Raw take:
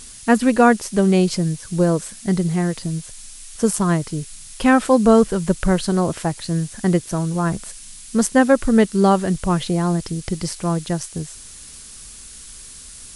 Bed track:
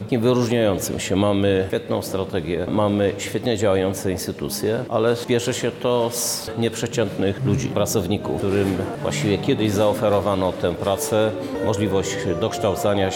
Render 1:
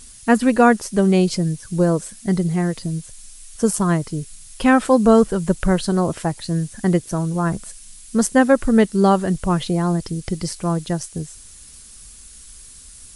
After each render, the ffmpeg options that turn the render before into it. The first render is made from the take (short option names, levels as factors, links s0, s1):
-af "afftdn=nr=6:nf=-40"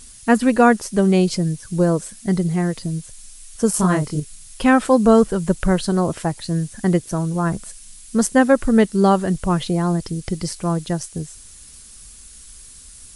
-filter_complex "[0:a]asettb=1/sr,asplit=3[s0][s1][s2];[s0]atrim=end=3.714[s3];[s1]atrim=start=3.71:end=4.2,asetpts=PTS-STARTPTS,afade=t=in:d=0.004:c=qsin,afade=t=out:st=0.486:d=0.004:c=qsin,asplit=2[s4][s5];[s5]adelay=27,volume=0.794[s6];[s4][s6]amix=inputs=2:normalize=0,atrim=end_sample=21609[s7];[s2]atrim=start=4.196[s8];[s3][s7]acrossfade=d=0.004:c1=hsin:c2=qsin[s9];[s9][s8]acrossfade=d=0.004:c1=qsin:c2=hsin"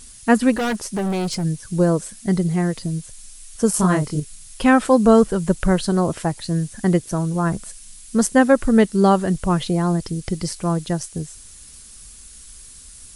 -filter_complex "[0:a]asplit=3[s0][s1][s2];[s0]afade=t=out:st=0.52:d=0.02[s3];[s1]asoftclip=type=hard:threshold=0.1,afade=t=in:st=0.52:d=0.02,afade=t=out:st=1.43:d=0.02[s4];[s2]afade=t=in:st=1.43:d=0.02[s5];[s3][s4][s5]amix=inputs=3:normalize=0"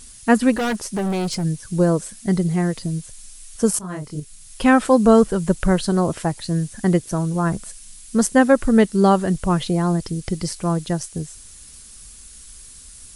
-filter_complex "[0:a]asplit=2[s0][s1];[s0]atrim=end=3.79,asetpts=PTS-STARTPTS,afade=t=out:st=3.786:d=0.004:c=hsin:silence=0.1[s2];[s1]atrim=start=3.79,asetpts=PTS-STARTPTS,afade=t=in:d=0.84:silence=0.1[s3];[s2][s3]concat=n=2:v=0:a=1"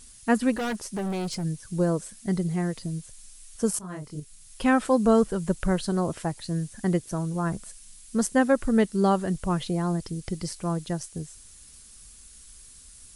-af "volume=0.447"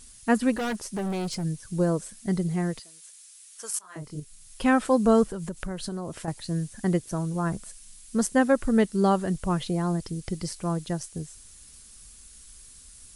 -filter_complex "[0:a]asettb=1/sr,asplit=3[s0][s1][s2];[s0]atrim=end=2.794[s3];[s1]atrim=start=2.79:end=3.96,asetpts=PTS-STARTPTS,afade=t=in:d=0.004:c=qsin,afade=t=out:st=1.166:d=0.004:c=qsin,highpass=1200[s4];[s2]atrim=start=3.956[s5];[s3][s4]acrossfade=d=0.004:c1=hsin:c2=qsin[s6];[s6][s5]acrossfade=d=0.004:c1=qsin:c2=hsin,asettb=1/sr,asplit=3[s7][s8][s9];[s7]atrim=end=5.284[s10];[s8]atrim=start=5.28:end=6.28,asetpts=PTS-STARTPTS,afade=t=in:d=0.004:c=qsin,afade=t=out:st=0.996:d=0.004:c=qsin,acompressor=threshold=0.0355:ratio=6:attack=3.2:release=140:knee=1:detection=peak[s11];[s9]atrim=start=6.276[s12];[s10][s11]acrossfade=d=0.004:c1=hsin:c2=qsin[s13];[s13][s12]acrossfade=d=0.004:c1=qsin:c2=hsin"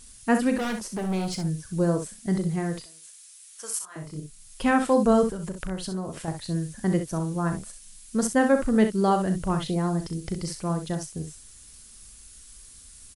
-af "aecho=1:1:37|64:0.299|0.376"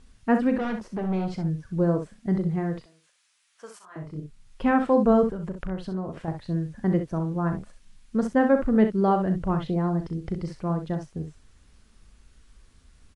-af "lowpass=f=2600:p=1,aemphasis=mode=reproduction:type=75fm"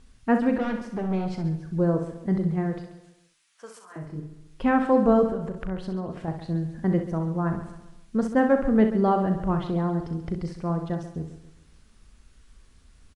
-af "aecho=1:1:136|272|408|544:0.237|0.0972|0.0399|0.0163"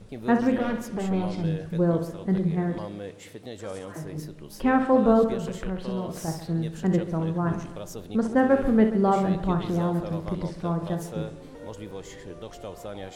-filter_complex "[1:a]volume=0.126[s0];[0:a][s0]amix=inputs=2:normalize=0"